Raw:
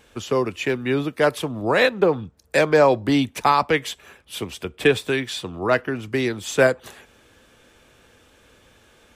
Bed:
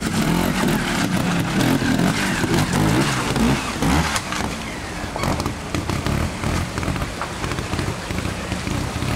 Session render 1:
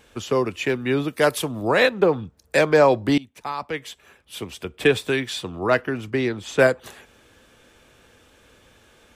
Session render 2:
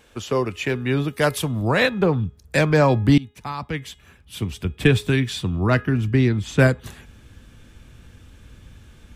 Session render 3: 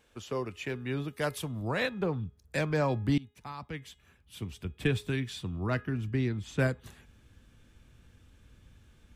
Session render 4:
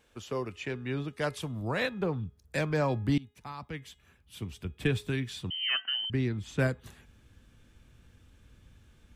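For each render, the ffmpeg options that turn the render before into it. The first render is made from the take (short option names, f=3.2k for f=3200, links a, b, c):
-filter_complex "[0:a]asettb=1/sr,asplit=3[a][b][c];[a]atrim=end=1.084[d];[b]atrim=start=1.08:end=1.68,asetpts=PTS-STARTPTS,afade=t=in:d=0.004:c=qsin,afade=t=out:st=0.596:d=0.004:c=qsin,aemphasis=mode=production:type=cd[e];[c]atrim=start=1.676[f];[d][e]acrossfade=d=0.004:c1=hsin:c2=qsin[g];[g][f]acrossfade=d=0.004:c1=qsin:c2=hsin,asettb=1/sr,asplit=3[h][i][j];[h]atrim=end=6.104[k];[i]atrim=start=6.1:end=6.59,asetpts=PTS-STARTPTS,afade=t=in:d=0.004:c=qsin,afade=t=out:st=0.486:d=0.004:c=qsin,aemphasis=mode=reproduction:type=50kf[l];[j]atrim=start=6.586[m];[k][l]acrossfade=d=0.004:c1=hsin:c2=qsin[n];[n][m]acrossfade=d=0.004:c1=qsin:c2=hsin,asplit=2[o][p];[o]atrim=end=3.18,asetpts=PTS-STARTPTS,afade=t=out:st=3.176:d=0.004:c=hsin:silence=0.0794328[q];[p]atrim=start=3.18,asetpts=PTS-STARTPTS,afade=t=in:d=1.83:silence=0.0794328[r];[q][r]concat=n=2:v=0:a=1"
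-af "bandreject=f=416.2:t=h:w=4,bandreject=f=832.4:t=h:w=4,bandreject=f=1.2486k:t=h:w=4,bandreject=f=1.6648k:t=h:w=4,bandreject=f=2.081k:t=h:w=4,bandreject=f=2.4972k:t=h:w=4,bandreject=f=2.9134k:t=h:w=4,bandreject=f=3.3296k:t=h:w=4,bandreject=f=3.7458k:t=h:w=4,asubboost=boost=8:cutoff=180"
-af "volume=-12dB"
-filter_complex "[0:a]asettb=1/sr,asplit=3[a][b][c];[a]atrim=end=0.554[d];[b]atrim=start=0.55:end=1.42,asetpts=PTS-STARTPTS,afade=t=in:d=0.004:c=qsin,afade=t=out:st=0.866:d=0.004:c=qsin,lowpass=8.1k[e];[c]atrim=start=1.416[f];[d][e]acrossfade=d=0.004:c1=hsin:c2=qsin[g];[g][f]acrossfade=d=0.004:c1=qsin:c2=hsin,asettb=1/sr,asplit=3[h][i][j];[h]atrim=end=5.504[k];[i]atrim=start=5.5:end=6.1,asetpts=PTS-STARTPTS,afade=t=in:d=0.004:c=qsin,afade=t=out:st=0.596:d=0.004:c=qsin,lowpass=f=2.7k:t=q:w=0.5098,lowpass=f=2.7k:t=q:w=0.6013,lowpass=f=2.7k:t=q:w=0.9,lowpass=f=2.7k:t=q:w=2.563,afreqshift=-3200[l];[j]atrim=start=6.096[m];[k][l]acrossfade=d=0.004:c1=hsin:c2=qsin[n];[n][m]acrossfade=d=0.004:c1=qsin:c2=hsin"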